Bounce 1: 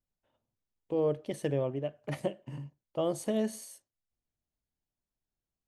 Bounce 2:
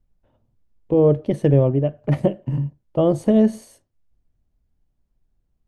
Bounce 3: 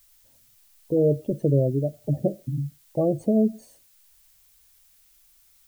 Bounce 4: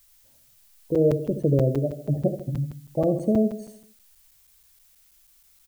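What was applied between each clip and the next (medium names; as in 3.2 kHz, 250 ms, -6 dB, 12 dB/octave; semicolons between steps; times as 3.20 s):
tilt EQ -3.5 dB/octave; trim +9 dB
spectral gate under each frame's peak -20 dB strong; added noise blue -54 dBFS; trim -5 dB
feedback delay 75 ms, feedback 51%, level -10 dB; crackling interface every 0.16 s, samples 256, zero, from 0.95 s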